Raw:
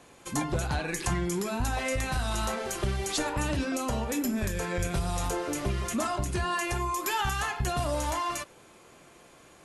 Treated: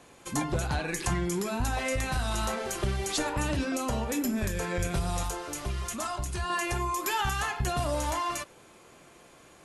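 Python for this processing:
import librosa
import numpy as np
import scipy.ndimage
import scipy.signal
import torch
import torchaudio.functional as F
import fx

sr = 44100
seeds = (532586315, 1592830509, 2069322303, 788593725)

y = fx.graphic_eq(x, sr, hz=(125, 250, 500, 2000), db=(-4, -8, -6, -4), at=(5.23, 6.5))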